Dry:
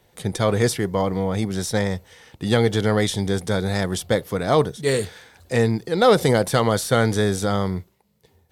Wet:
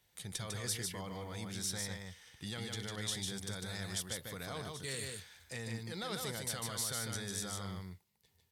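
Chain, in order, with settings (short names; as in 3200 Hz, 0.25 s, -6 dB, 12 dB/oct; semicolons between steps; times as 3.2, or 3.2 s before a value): limiter -15 dBFS, peak gain reduction 10.5 dB; passive tone stack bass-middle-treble 5-5-5; on a send: echo 0.15 s -3.5 dB; on the sum: gain -2 dB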